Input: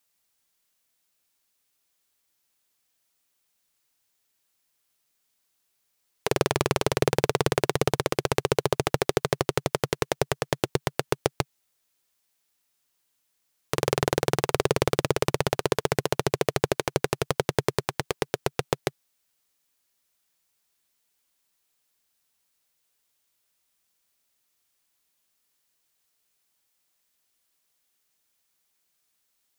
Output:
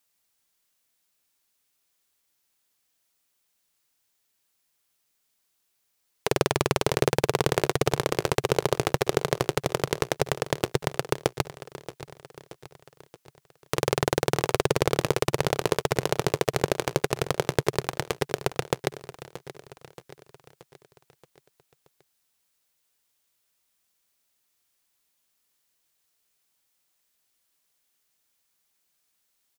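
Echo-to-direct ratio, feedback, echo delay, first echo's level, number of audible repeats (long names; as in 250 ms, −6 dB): −13.5 dB, 53%, 627 ms, −15.0 dB, 4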